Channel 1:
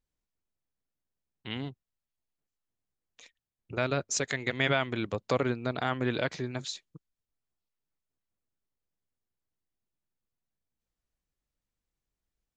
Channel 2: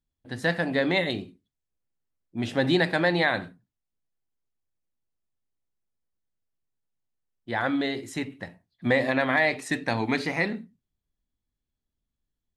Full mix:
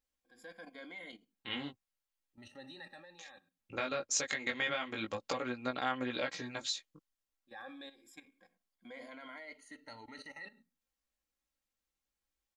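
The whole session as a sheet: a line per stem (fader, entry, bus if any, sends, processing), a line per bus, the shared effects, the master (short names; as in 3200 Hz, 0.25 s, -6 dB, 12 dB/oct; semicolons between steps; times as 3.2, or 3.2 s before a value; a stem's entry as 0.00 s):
+3.0 dB, 0.00 s, no send, compressor 6:1, threshold -29 dBFS, peak gain reduction 8 dB; chorus 0.34 Hz, delay 15.5 ms, depth 5.1 ms
-19.0 dB, 0.00 s, no send, moving spectral ripple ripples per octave 1.8, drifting -0.25 Hz, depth 19 dB; level quantiser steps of 14 dB; auto duck -9 dB, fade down 0.35 s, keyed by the first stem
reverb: off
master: low shelf 380 Hz -10 dB; comb 3.7 ms, depth 50%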